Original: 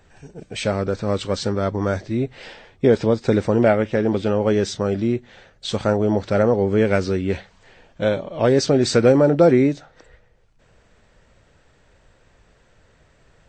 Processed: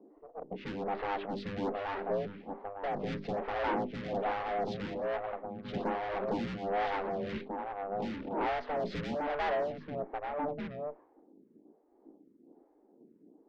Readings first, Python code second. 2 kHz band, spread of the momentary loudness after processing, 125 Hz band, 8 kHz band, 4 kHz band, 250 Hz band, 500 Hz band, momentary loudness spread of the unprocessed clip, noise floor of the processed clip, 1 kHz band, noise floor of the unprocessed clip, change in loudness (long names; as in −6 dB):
−10.5 dB, 9 LU, −21.0 dB, below −30 dB, −16.5 dB, −18.0 dB, −16.5 dB, 11 LU, −66 dBFS, −4.5 dB, −57 dBFS, −16.0 dB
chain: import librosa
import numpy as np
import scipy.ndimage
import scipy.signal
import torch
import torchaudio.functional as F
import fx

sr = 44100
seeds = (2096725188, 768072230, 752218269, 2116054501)

p1 = fx.env_lowpass_down(x, sr, base_hz=1400.0, full_db=-14.5)
p2 = p1 + fx.echo_single(p1, sr, ms=1186, db=-13.0, dry=0)
p3 = fx.env_lowpass(p2, sr, base_hz=310.0, full_db=-15.5)
p4 = p3 * np.sin(2.0 * np.pi * 300.0 * np.arange(len(p3)) / sr)
p5 = scipy.signal.sosfilt(scipy.signal.butter(4, 200.0, 'highpass', fs=sr, output='sos'), p4)
p6 = fx.hum_notches(p5, sr, base_hz=50, count=8)
p7 = fx.tube_stage(p6, sr, drive_db=34.0, bias=0.55)
p8 = fx.air_absorb(p7, sr, metres=220.0)
p9 = p8 * (1.0 - 0.39 / 2.0 + 0.39 / 2.0 * np.cos(2.0 * np.pi * 1.9 * (np.arange(len(p8)) / sr)))
p10 = fx.stagger_phaser(p9, sr, hz=1.2)
y = F.gain(torch.from_numpy(p10), 7.5).numpy()